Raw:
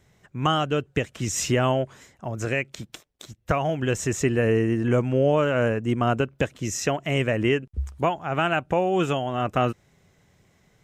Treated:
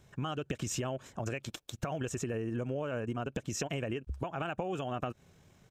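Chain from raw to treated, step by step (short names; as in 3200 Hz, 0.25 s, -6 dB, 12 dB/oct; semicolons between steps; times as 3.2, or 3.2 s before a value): notch 2000 Hz, Q 7.8; compressor 10:1, threshold -32 dBFS, peak gain reduction 16 dB; tempo 1.9×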